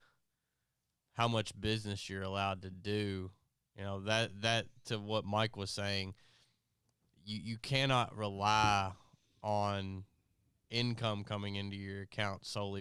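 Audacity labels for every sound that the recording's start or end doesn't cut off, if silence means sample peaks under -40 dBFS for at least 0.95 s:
1.180000	6.100000	sound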